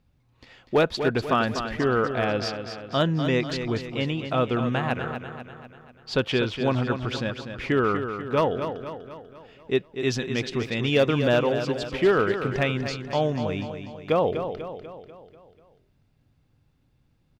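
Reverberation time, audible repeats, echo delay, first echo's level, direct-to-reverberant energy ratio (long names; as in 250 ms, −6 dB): no reverb audible, 5, 245 ms, −8.5 dB, no reverb audible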